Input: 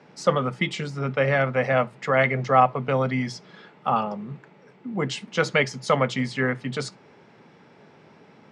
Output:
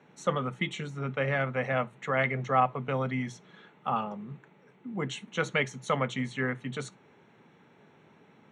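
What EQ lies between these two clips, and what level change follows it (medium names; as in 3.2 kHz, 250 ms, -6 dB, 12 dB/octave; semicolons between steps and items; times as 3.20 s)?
Butterworth band-stop 4.9 kHz, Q 3.4; peaking EQ 590 Hz -3 dB 0.77 oct; -6.0 dB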